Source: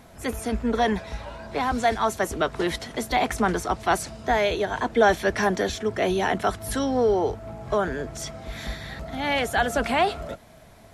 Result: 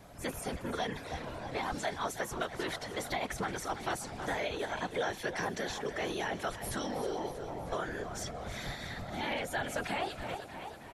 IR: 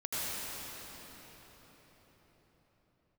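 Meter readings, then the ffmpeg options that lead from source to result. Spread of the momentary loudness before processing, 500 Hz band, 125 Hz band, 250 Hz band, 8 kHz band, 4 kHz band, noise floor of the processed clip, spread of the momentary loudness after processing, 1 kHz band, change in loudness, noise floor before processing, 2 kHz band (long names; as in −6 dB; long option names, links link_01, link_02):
13 LU, −13.0 dB, −9.5 dB, −12.5 dB, −7.5 dB, −8.0 dB, −47 dBFS, 6 LU, −12.0 dB, −12.0 dB, −49 dBFS, −10.0 dB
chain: -filter_complex "[0:a]afftfilt=real='hypot(re,im)*cos(2*PI*random(0))':imag='hypot(re,im)*sin(2*PI*random(1))':win_size=512:overlap=0.75,asplit=7[link_01][link_02][link_03][link_04][link_05][link_06][link_07];[link_02]adelay=317,afreqshift=34,volume=-15dB[link_08];[link_03]adelay=634,afreqshift=68,volume=-19.9dB[link_09];[link_04]adelay=951,afreqshift=102,volume=-24.8dB[link_10];[link_05]adelay=1268,afreqshift=136,volume=-29.6dB[link_11];[link_06]adelay=1585,afreqshift=170,volume=-34.5dB[link_12];[link_07]adelay=1902,afreqshift=204,volume=-39.4dB[link_13];[link_01][link_08][link_09][link_10][link_11][link_12][link_13]amix=inputs=7:normalize=0,acrossover=split=620|1600[link_14][link_15][link_16];[link_14]acompressor=threshold=-40dB:ratio=4[link_17];[link_15]acompressor=threshold=-42dB:ratio=4[link_18];[link_16]acompressor=threshold=-41dB:ratio=4[link_19];[link_17][link_18][link_19]amix=inputs=3:normalize=0,volume=1.5dB"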